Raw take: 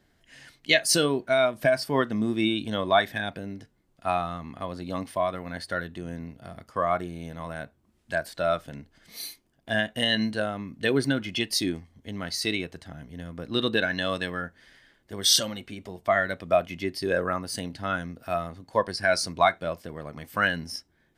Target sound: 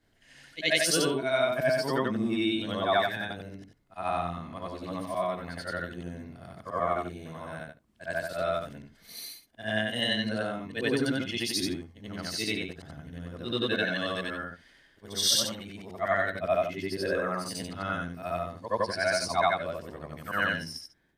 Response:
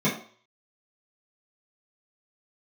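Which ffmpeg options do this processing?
-af "afftfilt=real='re':imag='-im':win_size=8192:overlap=0.75,volume=1.5dB"

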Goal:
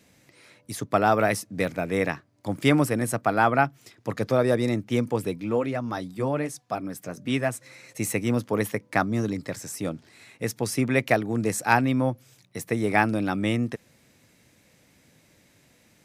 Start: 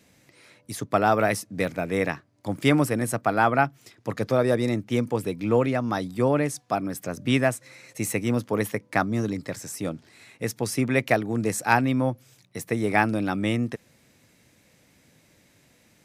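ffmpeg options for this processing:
ffmpeg -i in.wav -filter_complex "[0:a]asplit=3[link_01][link_02][link_03];[link_01]afade=type=out:start_time=5.37:duration=0.02[link_04];[link_02]flanger=delay=0.7:depth=6.1:regen=-56:speed=1.2:shape=triangular,afade=type=in:start_time=5.37:duration=0.02,afade=type=out:start_time=7.53:duration=0.02[link_05];[link_03]afade=type=in:start_time=7.53:duration=0.02[link_06];[link_04][link_05][link_06]amix=inputs=3:normalize=0" out.wav

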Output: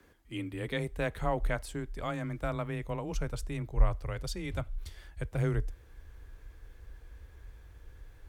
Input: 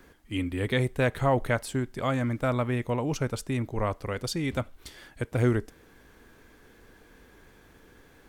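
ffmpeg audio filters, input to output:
ffmpeg -i in.wav -af "asubboost=boost=11.5:cutoff=57,afreqshift=19,volume=-7dB" out.wav

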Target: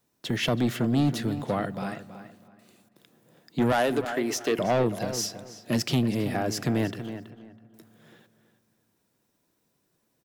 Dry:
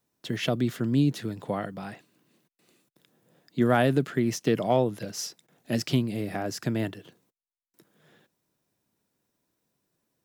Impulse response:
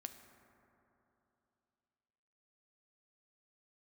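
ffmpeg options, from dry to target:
-filter_complex "[0:a]asettb=1/sr,asplit=3[link_01][link_02][link_03];[link_01]atrim=end=3.724[link_04];[link_02]atrim=start=3.72:end=4.59,asetpts=PTS-STARTPTS,afade=type=in:duration=0.004:curve=qsin,afade=type=out:start_time=0.866:duration=0.004:curve=qsin,highpass=390[link_05];[link_03]atrim=start=4.586[link_06];[link_04][link_05]acrossfade=duration=0.004:curve1=hsin:curve2=qsin[link_07];[link_07][link_06]acrossfade=duration=0.004:curve1=qsin:curve2=hsin,asoftclip=type=tanh:threshold=-22dB,asplit=2[link_08][link_09];[link_09]adelay=326,lowpass=frequency=3000:poles=1,volume=-11dB,asplit=2[link_10][link_11];[link_11]adelay=326,lowpass=frequency=3000:poles=1,volume=0.24,asplit=2[link_12][link_13];[link_13]adelay=326,lowpass=frequency=3000:poles=1,volume=0.24[link_14];[link_08][link_10][link_12][link_14]amix=inputs=4:normalize=0,asplit=2[link_15][link_16];[1:a]atrim=start_sample=2205[link_17];[link_16][link_17]afir=irnorm=-1:irlink=0,volume=-7.5dB[link_18];[link_15][link_18]amix=inputs=2:normalize=0,volume=2.5dB"

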